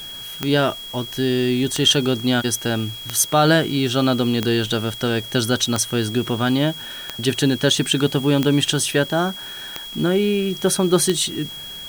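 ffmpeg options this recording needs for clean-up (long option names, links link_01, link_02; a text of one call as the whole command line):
ffmpeg -i in.wav -af "adeclick=threshold=4,bandreject=frequency=3300:width=30,afwtdn=0.0071" out.wav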